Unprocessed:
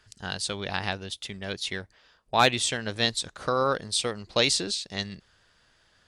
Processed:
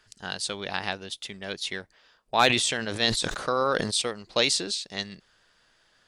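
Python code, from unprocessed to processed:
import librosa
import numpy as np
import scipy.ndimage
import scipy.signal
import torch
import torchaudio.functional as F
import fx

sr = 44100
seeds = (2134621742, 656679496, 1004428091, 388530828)

y = fx.peak_eq(x, sr, hz=73.0, db=-10.5, octaves=1.8)
y = fx.sustainer(y, sr, db_per_s=41.0, at=(2.46, 4.02))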